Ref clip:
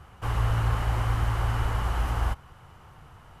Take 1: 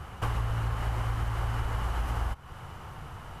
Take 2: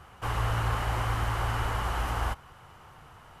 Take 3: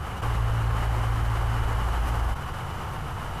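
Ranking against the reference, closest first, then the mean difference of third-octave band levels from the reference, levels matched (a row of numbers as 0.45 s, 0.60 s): 2, 1, 3; 3.0 dB, 4.5 dB, 6.5 dB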